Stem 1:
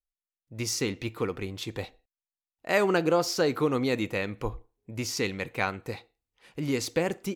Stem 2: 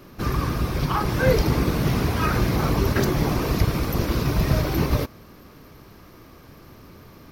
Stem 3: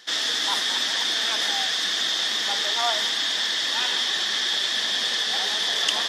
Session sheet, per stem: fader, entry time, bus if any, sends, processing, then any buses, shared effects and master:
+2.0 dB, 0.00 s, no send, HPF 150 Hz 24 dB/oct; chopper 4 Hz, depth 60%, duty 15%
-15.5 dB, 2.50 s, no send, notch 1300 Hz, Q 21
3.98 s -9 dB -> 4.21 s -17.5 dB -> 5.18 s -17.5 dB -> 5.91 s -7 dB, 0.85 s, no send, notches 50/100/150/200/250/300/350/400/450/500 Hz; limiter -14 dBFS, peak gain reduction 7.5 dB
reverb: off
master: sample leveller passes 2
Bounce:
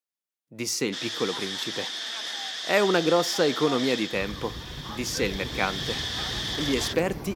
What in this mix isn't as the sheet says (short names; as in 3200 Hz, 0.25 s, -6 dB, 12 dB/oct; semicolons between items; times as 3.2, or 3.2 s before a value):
stem 1: missing chopper 4 Hz, depth 60%, duty 15%; stem 2: entry 2.50 s -> 3.95 s; master: missing sample leveller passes 2